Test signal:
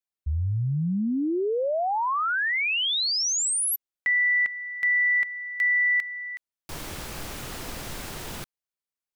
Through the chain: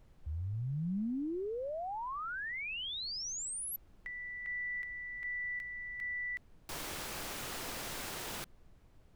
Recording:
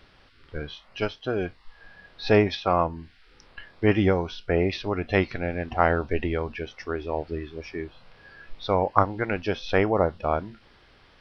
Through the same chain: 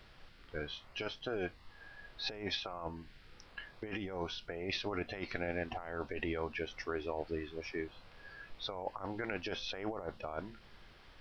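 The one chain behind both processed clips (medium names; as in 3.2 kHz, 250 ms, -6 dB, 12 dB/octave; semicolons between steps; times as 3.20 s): bass shelf 230 Hz -10 dB; compressor with a negative ratio -31 dBFS, ratio -1; added noise brown -50 dBFS; trim -8 dB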